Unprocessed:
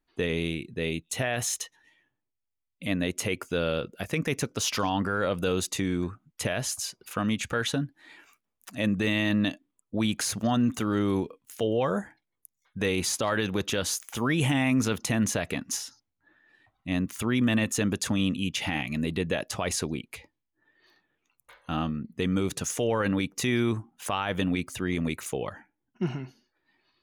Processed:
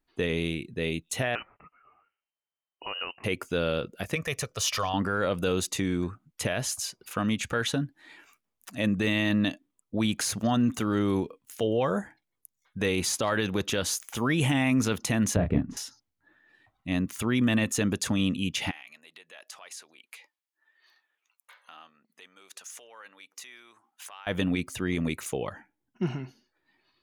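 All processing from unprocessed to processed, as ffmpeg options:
ffmpeg -i in.wav -filter_complex "[0:a]asettb=1/sr,asplit=3[link_01][link_02][link_03];[link_01]atrim=end=1.354[link_04];[link_02]atrim=start=1.35:end=3.24,asetpts=PTS-STARTPTS,afade=type=in:duration=0.004:curve=qsin,afade=type=out:start_time=1.886:duration=0.004:curve=qsin,aemphasis=mode=production:type=riaa,acompressor=threshold=-27dB:ratio=4:attack=3.2:release=140:knee=1:detection=peak,lowpass=frequency=2600:width_type=q:width=0.5098,lowpass=frequency=2600:width_type=q:width=0.6013,lowpass=frequency=2600:width_type=q:width=0.9,lowpass=frequency=2600:width_type=q:width=2.563,afreqshift=-3100[link_05];[link_03]atrim=start=3.236[link_06];[link_04][link_05]acrossfade=duration=0.004:curve1=hsin:curve2=qsin[link_07];[link_07][link_06]acrossfade=duration=0.004:curve1=qsin:curve2=hsin,asettb=1/sr,asplit=3[link_08][link_09][link_10];[link_08]atrim=end=4.154[link_11];[link_09]atrim=start=4.15:end=4.94,asetpts=PTS-STARTPTS,afade=type=in:duration=0.004:curve=qsin,afade=type=out:start_time=0.786:duration=0.004:curve=qsin,equalizer=frequency=250:width_type=o:width=1.2:gain=-13,bandreject=frequency=1600:width=28,aecho=1:1:1.7:0.41,atrim=end_sample=34839[link_12];[link_10]atrim=start=4.936[link_13];[link_11][link_12]acrossfade=duration=0.004:curve1=hsin:curve2=qsin[link_14];[link_14][link_13]acrossfade=duration=0.004:curve1=qsin:curve2=hsin,asettb=1/sr,asplit=3[link_15][link_16][link_17];[link_15]atrim=end=15.364[link_18];[link_16]atrim=start=15.36:end=15.77,asetpts=PTS-STARTPTS,afade=type=in:duration=0.004:curve=qsin,afade=type=out:start_time=0.406:duration=0.004:curve=qsin,lowpass=frequency=1000:poles=1,aemphasis=mode=reproduction:type=riaa,asplit=2[link_19][link_20];[link_20]adelay=28,volume=-5dB[link_21];[link_19][link_21]amix=inputs=2:normalize=0,atrim=end_sample=18081[link_22];[link_17]atrim=start=15.766[link_23];[link_18][link_22]acrossfade=duration=0.004:curve1=hsin:curve2=qsin[link_24];[link_24][link_23]acrossfade=duration=0.004:curve1=qsin:curve2=hsin,asettb=1/sr,asplit=3[link_25][link_26][link_27];[link_25]atrim=end=18.714[link_28];[link_26]atrim=start=18.71:end=24.27,asetpts=PTS-STARTPTS,afade=type=in:duration=0.004:curve=qsin,afade=type=out:start_time=5.556:duration=0.004:curve=qsin,acompressor=threshold=-40dB:ratio=5:attack=3.2:release=140:knee=1:detection=peak,highpass=930[link_29];[link_27]atrim=start=24.266[link_30];[link_28][link_29]acrossfade=duration=0.004:curve1=hsin:curve2=qsin[link_31];[link_31][link_30]acrossfade=duration=0.004:curve1=qsin:curve2=hsin" out.wav

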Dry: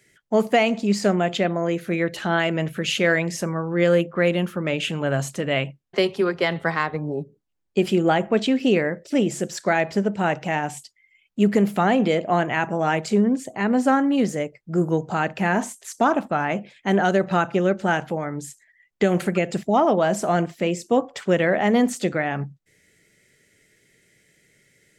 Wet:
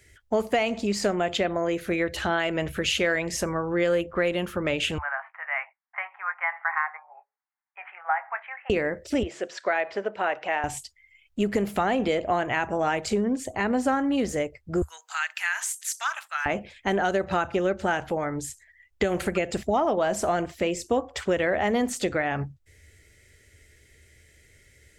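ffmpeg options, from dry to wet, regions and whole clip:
ffmpeg -i in.wav -filter_complex "[0:a]asettb=1/sr,asplit=3[link_01][link_02][link_03];[link_01]atrim=end=4.984[link_04];[link_02]atrim=start=4.98:end=8.7,asetpts=PTS-STARTPTS,afade=type=in:duration=0.004:curve=qsin,afade=type=out:start_time=3.716:duration=0.004:curve=qsin,asuperpass=centerf=1300:order=12:qfactor=0.9,asplit=2[link_05][link_06];[link_06]adelay=19,volume=-12dB[link_07];[link_05][link_07]amix=inputs=2:normalize=0,atrim=end_sample=164052[link_08];[link_03]atrim=start=8.696[link_09];[link_04][link_08]acrossfade=duration=0.004:curve1=hsin:curve2=qsin[link_10];[link_10][link_09]acrossfade=duration=0.004:curve1=qsin:curve2=hsin,asettb=1/sr,asplit=3[link_11][link_12][link_13];[link_11]atrim=end=9.234[link_14];[link_12]atrim=start=9.23:end=10.64,asetpts=PTS-STARTPTS,afade=type=in:duration=0.004:curve=qsin,afade=type=out:start_time=1.406:duration=0.004:curve=qsin,highpass=490,lowpass=3100,bandreject=frequency=860:width=16[link_15];[link_13]atrim=start=10.636[link_16];[link_14][link_15]acrossfade=duration=0.004:curve1=hsin:curve2=qsin[link_17];[link_17][link_16]acrossfade=duration=0.004:curve1=qsin:curve2=hsin,asettb=1/sr,asplit=3[link_18][link_19][link_20];[link_18]atrim=end=14.824[link_21];[link_19]atrim=start=14.82:end=16.46,asetpts=PTS-STARTPTS,afade=type=in:duration=0.004:curve=qsin,afade=type=out:start_time=1.636:duration=0.004:curve=qsin,highpass=frequency=1400:width=0.5412,highpass=frequency=1400:width=1.3066,highshelf=frequency=6200:gain=7.5[link_22];[link_20]atrim=start=16.456[link_23];[link_21][link_22]acrossfade=duration=0.004:curve1=hsin:curve2=qsin[link_24];[link_24][link_23]acrossfade=duration=0.004:curve1=qsin:curve2=hsin,lowshelf=frequency=110:width_type=q:width=3:gain=13.5,acompressor=threshold=-25dB:ratio=2.5,volume=2dB" out.wav

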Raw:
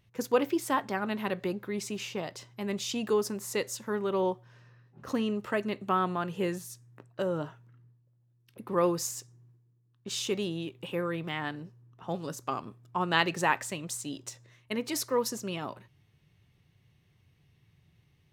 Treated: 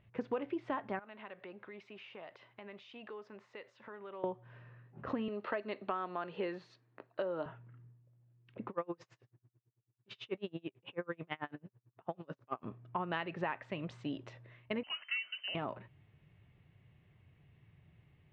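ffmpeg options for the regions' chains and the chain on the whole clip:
ffmpeg -i in.wav -filter_complex "[0:a]asettb=1/sr,asplit=3[link_01][link_02][link_03];[link_01]atrim=end=0.994[link_04];[link_02]atrim=start=0.99:end=4.24,asetpts=PTS-STARTPTS,afade=type=in:duration=0.004:curve=qsin,afade=type=out:start_time=3.246:duration=0.004:curve=qsin,highpass=frequency=820:poles=1,acompressor=threshold=-50dB:ratio=3:attack=3.2:release=140:knee=1:detection=peak[link_05];[link_03]atrim=start=4.236[link_06];[link_04][link_05]acrossfade=duration=0.004:curve1=hsin:curve2=qsin[link_07];[link_07][link_06]acrossfade=duration=0.004:curve1=qsin:curve2=hsin,asettb=1/sr,asplit=3[link_08][link_09][link_10];[link_08]atrim=end=5.284[link_11];[link_09]atrim=start=5.28:end=7.46,asetpts=PTS-STARTPTS,afade=type=in:duration=0.004:curve=qsin,afade=type=out:start_time=2.176:duration=0.004:curve=qsin,highpass=320,equalizer=frequency=4300:width=4.7:gain=14[link_12];[link_10]atrim=start=7.456[link_13];[link_11][link_12]acrossfade=duration=0.004:curve1=hsin:curve2=qsin[link_14];[link_14][link_13]acrossfade=duration=0.004:curve1=qsin:curve2=hsin,asettb=1/sr,asplit=3[link_15][link_16][link_17];[link_15]atrim=end=8.694[link_18];[link_16]atrim=start=8.69:end=12.64,asetpts=PTS-STARTPTS,afade=type=in:duration=0.004:curve=qsin,afade=type=out:start_time=3.946:duration=0.004:curve=qsin,lowpass=9200,lowshelf=frequency=150:gain=-10,aeval=exprs='val(0)*pow(10,-36*(0.5-0.5*cos(2*PI*9.1*n/s))/20)':channel_layout=same[link_19];[link_17]atrim=start=12.636[link_20];[link_18][link_19]acrossfade=duration=0.004:curve1=hsin:curve2=qsin[link_21];[link_21][link_20]acrossfade=duration=0.004:curve1=qsin:curve2=hsin,asettb=1/sr,asplit=3[link_22][link_23][link_24];[link_22]atrim=end=14.834[link_25];[link_23]atrim=start=14.83:end=15.55,asetpts=PTS-STARTPTS,afade=type=in:duration=0.004:curve=qsin,afade=type=out:start_time=0.716:duration=0.004:curve=qsin,acrossover=split=240|1900[link_26][link_27][link_28];[link_26]acompressor=threshold=-50dB:ratio=4[link_29];[link_27]acompressor=threshold=-27dB:ratio=4[link_30];[link_28]acompressor=threshold=-47dB:ratio=4[link_31];[link_29][link_30][link_31]amix=inputs=3:normalize=0,lowpass=frequency=2700:width_type=q:width=0.5098,lowpass=frequency=2700:width_type=q:width=0.6013,lowpass=frequency=2700:width_type=q:width=0.9,lowpass=frequency=2700:width_type=q:width=2.563,afreqshift=-3200,lowshelf=frequency=490:gain=-9.5[link_32];[link_24]atrim=start=15.546[link_33];[link_25][link_32]acrossfade=duration=0.004:curve1=hsin:curve2=qsin[link_34];[link_34][link_33]acrossfade=duration=0.004:curve1=qsin:curve2=hsin,lowpass=frequency=2800:width=0.5412,lowpass=frequency=2800:width=1.3066,equalizer=frequency=630:width_type=o:width=0.29:gain=4.5,acompressor=threshold=-35dB:ratio=6,volume=1dB" out.wav

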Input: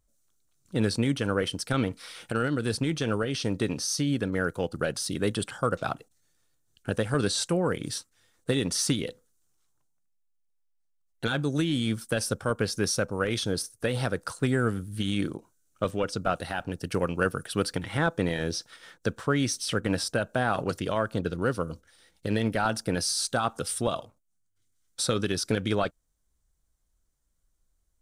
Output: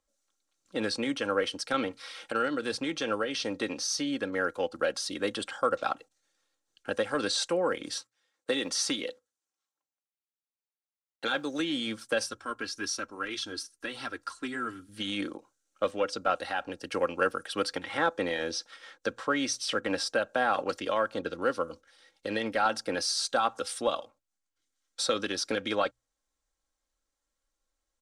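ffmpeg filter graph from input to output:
ffmpeg -i in.wav -filter_complex "[0:a]asettb=1/sr,asplit=3[link_01][link_02][link_03];[link_01]atrim=end=7.954[link_04];[link_02]atrim=start=7.95:end=11.6,asetpts=PTS-STARTPTS,afade=type=in:duration=0.004:curve=qsin,afade=type=out:start_time=3.646:duration=0.004:curve=qsin,highpass=frequency=170:poles=1,agate=range=-9dB:threshold=-59dB:ratio=16:release=100:detection=peak,acrusher=bits=9:mode=log:mix=0:aa=0.000001[link_05];[link_03]atrim=start=11.596[link_06];[link_04][link_05]acrossfade=duration=0.004:curve1=hsin:curve2=qsin[link_07];[link_07][link_06]acrossfade=duration=0.004:curve1=qsin:curve2=hsin,asettb=1/sr,asplit=3[link_08][link_09][link_10];[link_08]atrim=end=12.264[link_11];[link_09]atrim=start=12.26:end=14.89,asetpts=PTS-STARTPTS,afade=type=in:duration=0.004:curve=qsin,afade=type=out:start_time=2.626:duration=0.004:curve=qsin,equalizer=frequency=590:width=2.1:gain=-11.5,aecho=1:1:3:0.49,atrim=end_sample=115983,flanger=delay=0.6:depth=4.9:regen=-54:speed=1.7:shape=triangular[link_12];[link_10]atrim=start=14.886[link_13];[link_11][link_12]acrossfade=duration=0.004:curve1=hsin:curve2=qsin[link_14];[link_14][link_13]acrossfade=duration=0.004:curve1=qsin:curve2=hsin,acrossover=split=330 7300:gain=0.158 1 0.178[link_15][link_16][link_17];[link_15][link_16][link_17]amix=inputs=3:normalize=0,bandreject=frequency=60:width_type=h:width=6,bandreject=frequency=120:width_type=h:width=6,aecho=1:1:3.7:0.48" out.wav

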